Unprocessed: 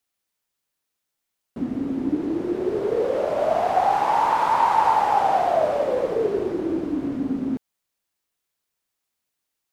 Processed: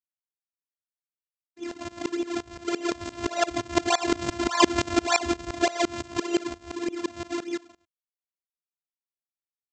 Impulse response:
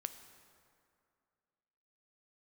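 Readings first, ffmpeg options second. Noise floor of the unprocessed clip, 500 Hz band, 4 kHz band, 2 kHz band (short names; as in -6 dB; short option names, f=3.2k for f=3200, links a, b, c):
-81 dBFS, -6.5 dB, +9.5 dB, +3.0 dB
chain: -filter_complex "[0:a]equalizer=f=140:w=0.45:g=3.5,aecho=1:1:275:0.2,acrossover=split=200|3000[a][b][c];[a]asoftclip=type=hard:threshold=-37.5dB[d];[d][b][c]amix=inputs=3:normalize=0,adynamicequalizer=threshold=0.0316:dfrequency=1200:dqfactor=0.92:tfrequency=1200:tqfactor=0.92:attack=5:release=100:ratio=0.375:range=2.5:mode=boostabove:tftype=bell,aresample=16000,acrusher=samples=26:mix=1:aa=0.000001:lfo=1:lforange=41.6:lforate=1.7,aresample=44100,afftfilt=real='hypot(re,im)*cos(PI*b)':imag='0':win_size=512:overlap=0.75,highpass=f=75:w=0.5412,highpass=f=75:w=1.3066,agate=range=-33dB:threshold=-35dB:ratio=3:detection=peak,aeval=exprs='val(0)*pow(10,-21*if(lt(mod(-5.8*n/s,1),2*abs(-5.8)/1000),1-mod(-5.8*n/s,1)/(2*abs(-5.8)/1000),(mod(-5.8*n/s,1)-2*abs(-5.8)/1000)/(1-2*abs(-5.8)/1000))/20)':c=same,volume=3.5dB"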